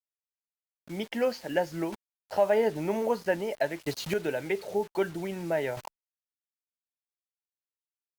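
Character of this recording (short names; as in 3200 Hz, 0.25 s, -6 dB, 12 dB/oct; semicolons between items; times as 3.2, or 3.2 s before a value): a quantiser's noise floor 8-bit, dither none; chopped level 0.52 Hz, depth 65%, duty 15%; Opus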